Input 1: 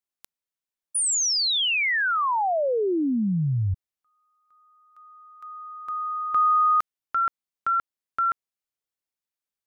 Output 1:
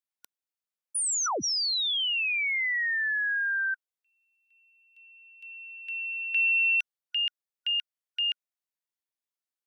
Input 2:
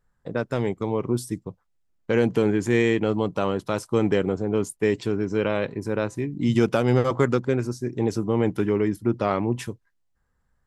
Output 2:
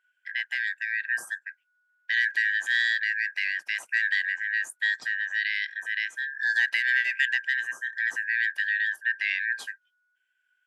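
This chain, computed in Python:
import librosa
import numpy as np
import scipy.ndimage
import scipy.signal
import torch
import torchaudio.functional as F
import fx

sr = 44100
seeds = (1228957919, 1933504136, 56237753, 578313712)

y = fx.band_shuffle(x, sr, order='4123')
y = scipy.signal.sosfilt(scipy.signal.bessel(2, 320.0, 'highpass', norm='mag', fs=sr, output='sos'), y)
y = F.gain(torch.from_numpy(y), -4.5).numpy()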